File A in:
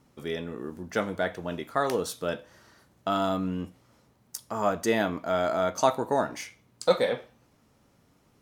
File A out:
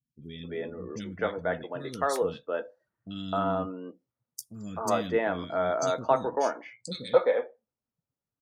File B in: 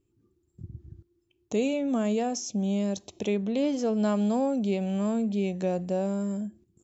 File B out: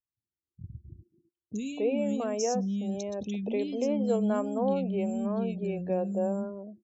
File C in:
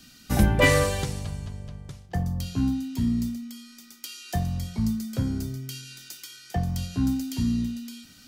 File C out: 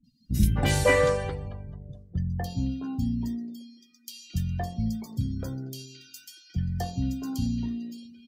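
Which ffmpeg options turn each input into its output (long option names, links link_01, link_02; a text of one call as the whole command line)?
ffmpeg -i in.wav -filter_complex "[0:a]afftdn=noise_reduction=29:noise_floor=-44,acrossover=split=270|2700[link_01][link_02][link_03];[link_03]adelay=40[link_04];[link_02]adelay=260[link_05];[link_01][link_05][link_04]amix=inputs=3:normalize=0,adynamicequalizer=threshold=0.00631:dfrequency=490:dqfactor=7.2:tfrequency=490:tqfactor=7.2:attack=5:release=100:ratio=0.375:range=2.5:mode=boostabove:tftype=bell,volume=-1dB" out.wav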